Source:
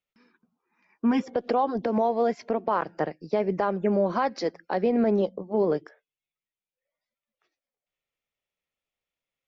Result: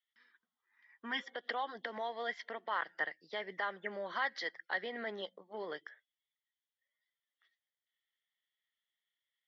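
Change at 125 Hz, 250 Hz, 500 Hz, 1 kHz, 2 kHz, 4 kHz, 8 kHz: under -25 dB, -25.0 dB, -18.0 dB, -12.0 dB, +1.5 dB, +1.0 dB, no reading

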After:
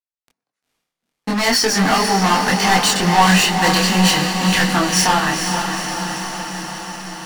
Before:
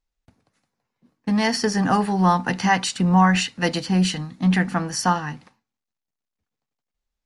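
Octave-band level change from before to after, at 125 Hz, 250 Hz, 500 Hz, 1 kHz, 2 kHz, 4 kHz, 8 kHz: +2.0 dB, +2.0 dB, +6.0 dB, +6.0 dB, +8.5 dB, +11.5 dB, +12.0 dB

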